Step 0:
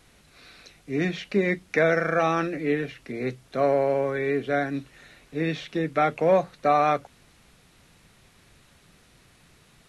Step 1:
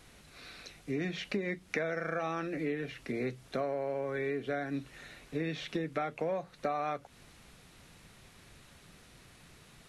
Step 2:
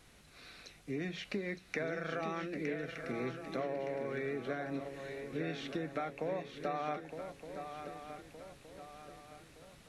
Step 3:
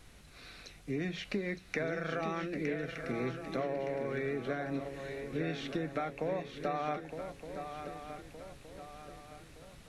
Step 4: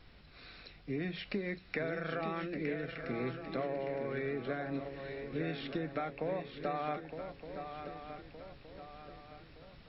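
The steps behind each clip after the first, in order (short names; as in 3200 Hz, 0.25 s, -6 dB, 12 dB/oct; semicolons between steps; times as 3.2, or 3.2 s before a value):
compressor 8:1, threshold -31 dBFS, peak gain reduction 15.5 dB
swung echo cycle 1.217 s, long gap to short 3:1, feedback 43%, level -8 dB; gain -4 dB
low shelf 85 Hz +9 dB; gain +2 dB
brick-wall FIR low-pass 5500 Hz; gain -1.5 dB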